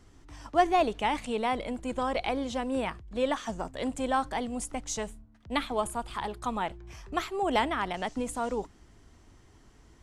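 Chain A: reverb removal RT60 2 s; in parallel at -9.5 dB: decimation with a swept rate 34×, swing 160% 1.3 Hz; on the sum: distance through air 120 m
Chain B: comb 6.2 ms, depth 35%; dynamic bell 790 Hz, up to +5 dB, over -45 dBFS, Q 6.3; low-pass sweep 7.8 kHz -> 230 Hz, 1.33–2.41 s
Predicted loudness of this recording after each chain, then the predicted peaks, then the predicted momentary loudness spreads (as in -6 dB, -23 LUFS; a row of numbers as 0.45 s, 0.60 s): -31.5 LUFS, -31.5 LUFS; -10.5 dBFS, -12.0 dBFS; 11 LU, 15 LU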